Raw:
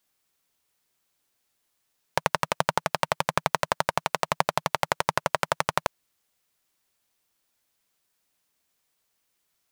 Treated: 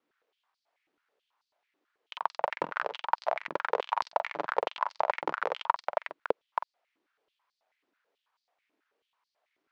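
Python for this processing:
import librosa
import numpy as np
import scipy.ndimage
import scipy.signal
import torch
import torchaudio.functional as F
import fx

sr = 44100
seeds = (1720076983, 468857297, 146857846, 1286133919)

y = fx.block_reorder(x, sr, ms=132.0, group=4)
y = fx.doubler(y, sr, ms=47.0, db=-10.5)
y = y + 10.0 ** (-10.5 / 20.0) * np.pad(y, (int(320 * sr / 1000.0), 0))[:len(y)]
y = fx.over_compress(y, sr, threshold_db=-28.0, ratio=-0.5)
y = fx.spacing_loss(y, sr, db_at_10k=36)
y = fx.filter_held_highpass(y, sr, hz=9.2, low_hz=310.0, high_hz=4600.0)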